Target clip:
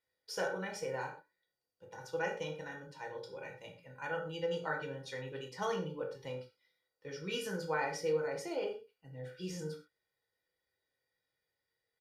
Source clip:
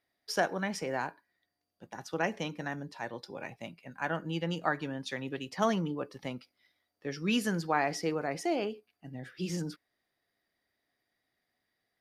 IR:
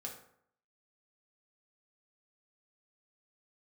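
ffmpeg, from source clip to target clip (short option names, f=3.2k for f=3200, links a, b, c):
-filter_complex "[0:a]aecho=1:1:2.1:0.81[a];[1:a]atrim=start_sample=2205,afade=t=out:st=0.18:d=0.01,atrim=end_sample=8379[b];[a][b]afir=irnorm=-1:irlink=0,volume=-4.5dB"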